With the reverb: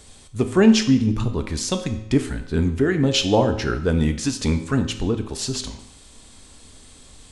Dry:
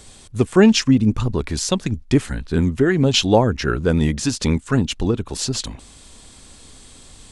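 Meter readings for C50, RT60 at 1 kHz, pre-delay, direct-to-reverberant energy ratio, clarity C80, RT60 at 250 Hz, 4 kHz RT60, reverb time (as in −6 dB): 11.0 dB, 0.80 s, 4 ms, 7.0 dB, 13.0 dB, 0.80 s, 0.75 s, 0.80 s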